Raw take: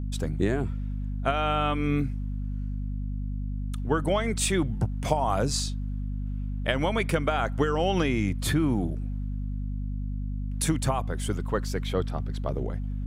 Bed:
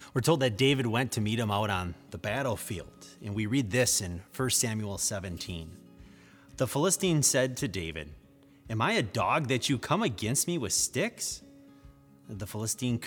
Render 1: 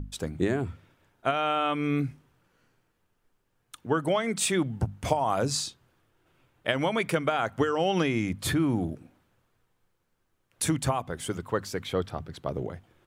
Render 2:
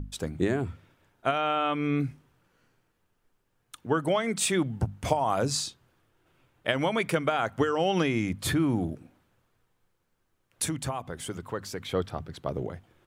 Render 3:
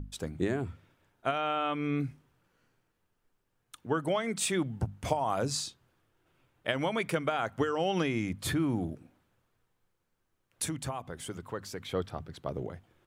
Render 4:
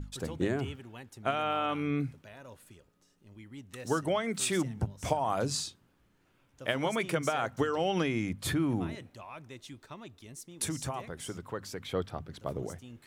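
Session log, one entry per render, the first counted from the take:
hum notches 50/100/150/200/250 Hz
1.38–2.00 s: distance through air 56 m; 10.65–11.89 s: compression 1.5:1, threshold -36 dBFS
trim -4 dB
add bed -19 dB

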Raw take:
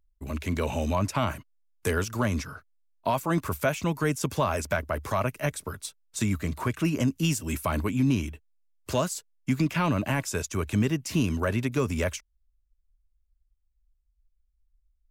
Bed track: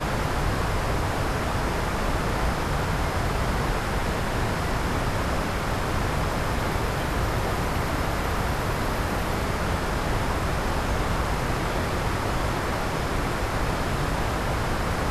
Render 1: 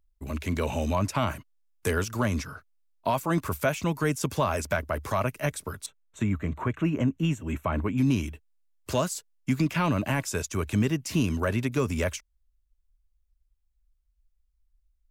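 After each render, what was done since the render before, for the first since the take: 5.86–7.98 s: boxcar filter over 9 samples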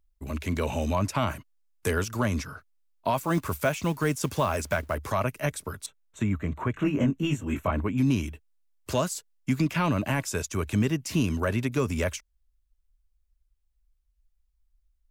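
3.16–4.95 s: companded quantiser 6-bit; 6.73–7.71 s: doubling 21 ms -2 dB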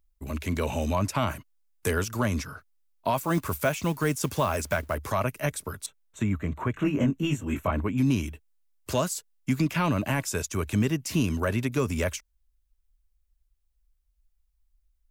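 treble shelf 10 kHz +5 dB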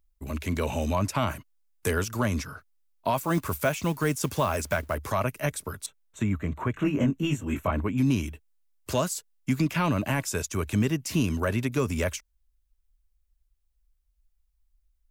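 no audible change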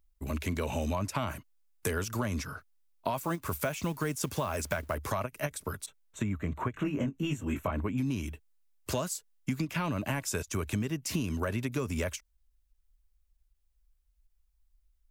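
compression, threshold -28 dBFS, peak gain reduction 8.5 dB; endings held to a fixed fall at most 440 dB/s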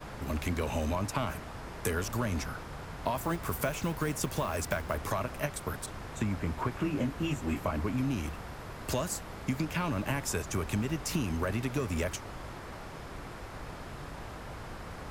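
add bed track -17 dB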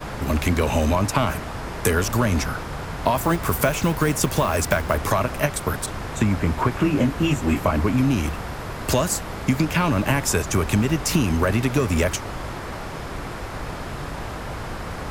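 trim +11.5 dB

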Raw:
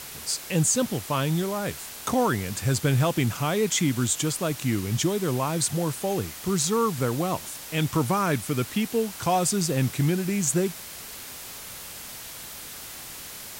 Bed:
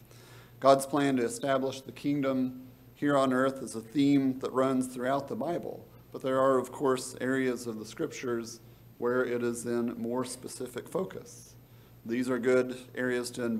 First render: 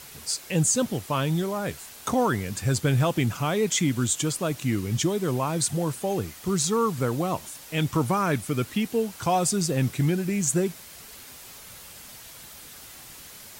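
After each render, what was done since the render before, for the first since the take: noise reduction 6 dB, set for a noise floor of -40 dBFS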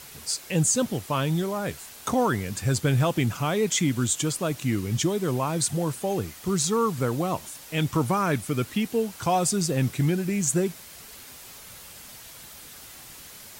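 no audible change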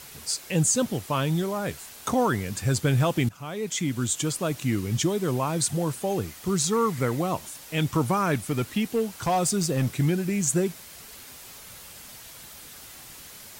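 3.29–4.66 s: fade in equal-power, from -17 dB; 6.73–7.21 s: peaking EQ 2 kHz +12.5 dB 0.23 oct; 8.34–9.93 s: overload inside the chain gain 18.5 dB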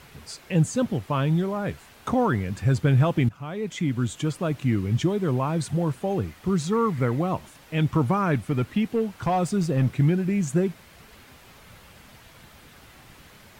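tone controls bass +4 dB, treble -14 dB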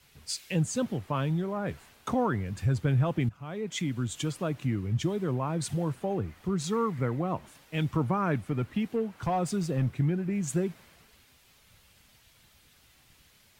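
compression 2:1, threshold -30 dBFS, peak gain reduction 8 dB; three bands expanded up and down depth 70%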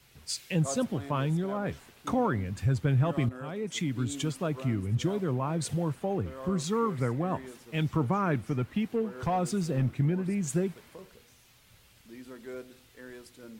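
add bed -16 dB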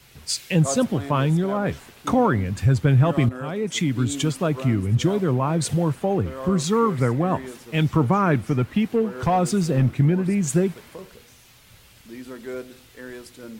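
trim +8.5 dB

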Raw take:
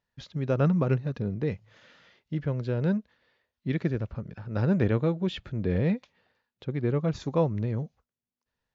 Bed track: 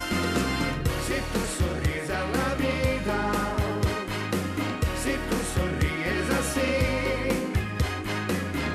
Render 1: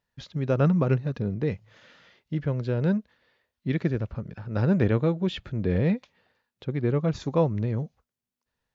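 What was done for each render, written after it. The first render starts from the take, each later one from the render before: trim +2 dB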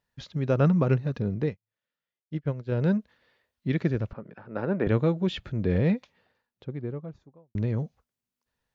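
1.46–2.72 s: upward expansion 2.5:1, over -47 dBFS; 4.13–4.87 s: band-pass 270–2100 Hz; 5.93–7.55 s: studio fade out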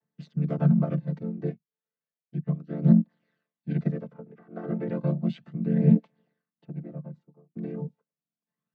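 vocoder on a held chord minor triad, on D3; phaser 0.33 Hz, delay 2.8 ms, feedback 46%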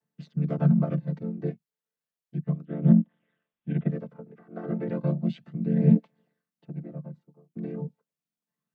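2.65–3.92 s: careless resampling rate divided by 6×, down none, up filtered; 5.23–5.78 s: dynamic bell 1.2 kHz, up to -5 dB, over -53 dBFS, Q 1.3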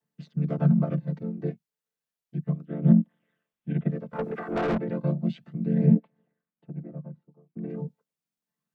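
4.13–4.78 s: overdrive pedal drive 32 dB, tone 2.2 kHz, clips at -18.5 dBFS; 5.86–7.70 s: distance through air 390 m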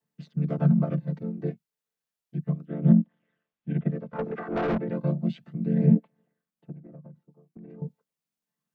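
2.92–4.91 s: distance through air 100 m; 6.72–7.82 s: compression, threshold -42 dBFS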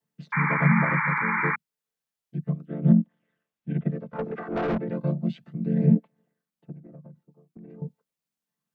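0.32–1.56 s: painted sound noise 820–2400 Hz -26 dBFS

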